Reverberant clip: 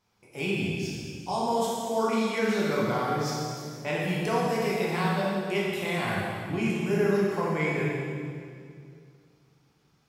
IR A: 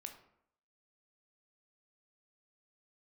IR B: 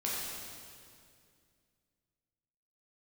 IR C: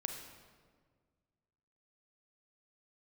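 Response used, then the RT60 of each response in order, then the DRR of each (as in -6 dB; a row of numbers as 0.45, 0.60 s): B; 0.70, 2.3, 1.7 s; 4.5, -6.5, 4.0 dB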